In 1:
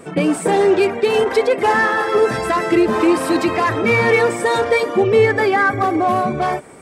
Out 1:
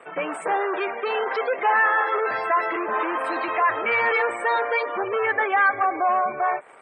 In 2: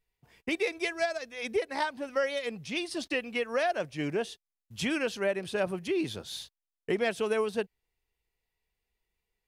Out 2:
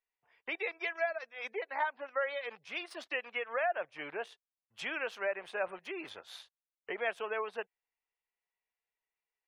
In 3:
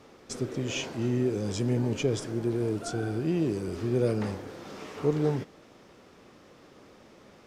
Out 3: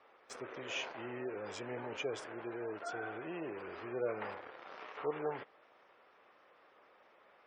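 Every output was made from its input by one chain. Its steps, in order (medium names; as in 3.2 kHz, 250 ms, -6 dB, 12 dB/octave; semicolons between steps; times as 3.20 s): in parallel at -5 dB: word length cut 6-bit, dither none; on the sum: hard clipper -8.5 dBFS; three-band isolator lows -19 dB, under 490 Hz, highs -14 dB, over 2.6 kHz; spectral gate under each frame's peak -30 dB strong; bass shelf 440 Hz -7 dB; trim -3.5 dB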